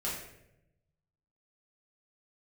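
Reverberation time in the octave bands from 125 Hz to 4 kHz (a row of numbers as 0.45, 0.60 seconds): 1.5, 1.1, 1.0, 0.65, 0.75, 0.55 seconds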